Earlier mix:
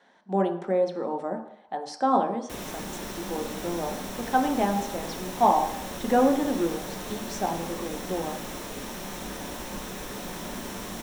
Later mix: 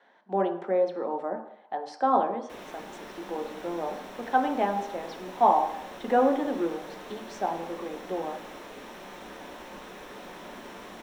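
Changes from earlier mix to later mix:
background -4.0 dB; master: add three-band isolator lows -12 dB, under 270 Hz, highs -13 dB, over 3700 Hz

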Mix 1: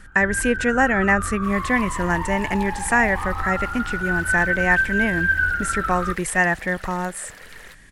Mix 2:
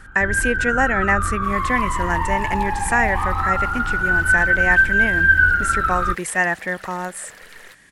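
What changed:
speech: add HPF 250 Hz 6 dB/oct; first sound +6.0 dB

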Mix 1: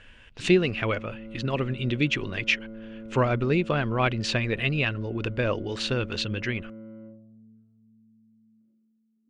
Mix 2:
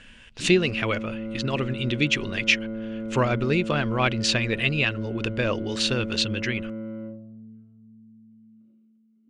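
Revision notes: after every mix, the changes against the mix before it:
background +8.5 dB; master: add high shelf 3700 Hz +11 dB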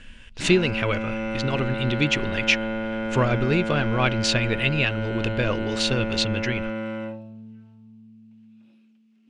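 background: remove running mean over 52 samples; master: add low shelf 71 Hz +11 dB

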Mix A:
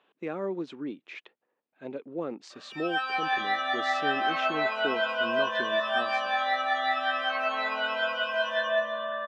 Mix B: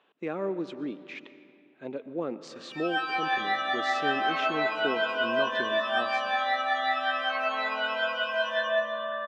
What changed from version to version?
speech: send on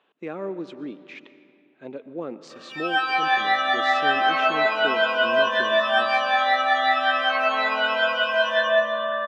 background +7.0 dB

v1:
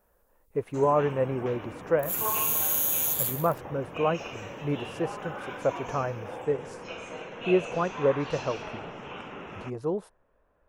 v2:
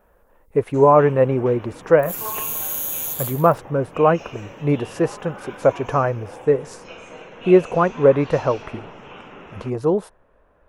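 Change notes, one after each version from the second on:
speech +10.5 dB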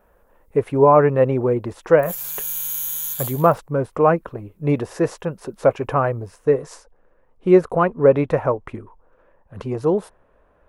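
first sound: muted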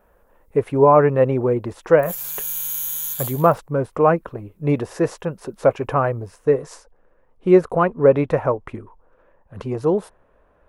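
none

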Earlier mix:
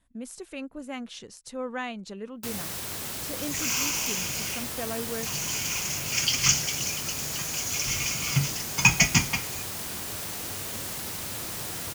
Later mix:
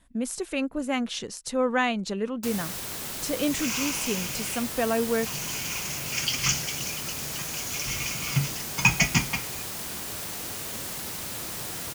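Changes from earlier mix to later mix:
speech +9.0 dB; second sound: add high shelf 6100 Hz -9 dB; master: add bell 96 Hz -6.5 dB 0.22 oct

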